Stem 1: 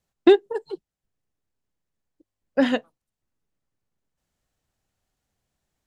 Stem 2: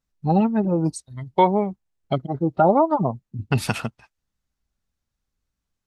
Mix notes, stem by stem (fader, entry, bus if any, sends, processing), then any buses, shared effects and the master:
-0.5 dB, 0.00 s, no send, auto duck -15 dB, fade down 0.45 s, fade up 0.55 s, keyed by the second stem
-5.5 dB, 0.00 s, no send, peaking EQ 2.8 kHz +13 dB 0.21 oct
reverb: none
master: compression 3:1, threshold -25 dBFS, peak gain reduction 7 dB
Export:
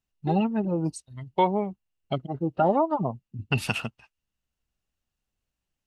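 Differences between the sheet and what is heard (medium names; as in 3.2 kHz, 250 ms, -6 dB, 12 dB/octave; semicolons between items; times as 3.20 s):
stem 1 -0.5 dB -> -11.5 dB; master: missing compression 3:1, threshold -25 dBFS, peak gain reduction 7 dB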